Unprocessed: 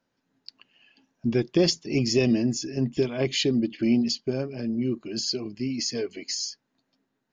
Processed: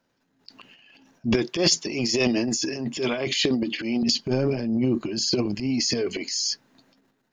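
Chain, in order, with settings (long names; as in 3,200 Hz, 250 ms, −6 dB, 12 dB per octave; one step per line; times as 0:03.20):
0:01.34–0:04.03: high-pass filter 570 Hz 6 dB per octave
transient designer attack −8 dB, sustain +11 dB
level +4.5 dB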